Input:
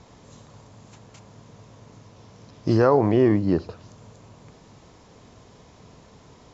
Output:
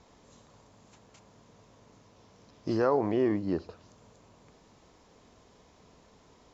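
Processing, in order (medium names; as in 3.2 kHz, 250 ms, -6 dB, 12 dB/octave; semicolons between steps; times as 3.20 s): peaking EQ 120 Hz -8 dB 0.97 oct; trim -7.5 dB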